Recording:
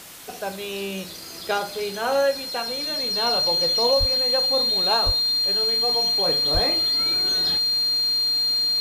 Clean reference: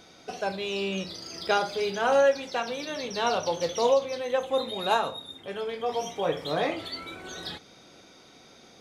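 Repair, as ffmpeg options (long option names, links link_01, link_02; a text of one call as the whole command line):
ffmpeg -i in.wav -filter_complex "[0:a]bandreject=frequency=4200:width=30,asplit=3[link_01][link_02][link_03];[link_01]afade=type=out:start_time=3.99:duration=0.02[link_04];[link_02]highpass=frequency=140:width=0.5412,highpass=frequency=140:width=1.3066,afade=type=in:start_time=3.99:duration=0.02,afade=type=out:start_time=4.11:duration=0.02[link_05];[link_03]afade=type=in:start_time=4.11:duration=0.02[link_06];[link_04][link_05][link_06]amix=inputs=3:normalize=0,asplit=3[link_07][link_08][link_09];[link_07]afade=type=out:start_time=5.05:duration=0.02[link_10];[link_08]highpass=frequency=140:width=0.5412,highpass=frequency=140:width=1.3066,afade=type=in:start_time=5.05:duration=0.02,afade=type=out:start_time=5.17:duration=0.02[link_11];[link_09]afade=type=in:start_time=5.17:duration=0.02[link_12];[link_10][link_11][link_12]amix=inputs=3:normalize=0,asplit=3[link_13][link_14][link_15];[link_13]afade=type=out:start_time=6.53:duration=0.02[link_16];[link_14]highpass=frequency=140:width=0.5412,highpass=frequency=140:width=1.3066,afade=type=in:start_time=6.53:duration=0.02,afade=type=out:start_time=6.65:duration=0.02[link_17];[link_15]afade=type=in:start_time=6.65:duration=0.02[link_18];[link_16][link_17][link_18]amix=inputs=3:normalize=0,afwtdn=0.0089,asetnsamples=nb_out_samples=441:pad=0,asendcmd='6.99 volume volume -4dB',volume=0dB" out.wav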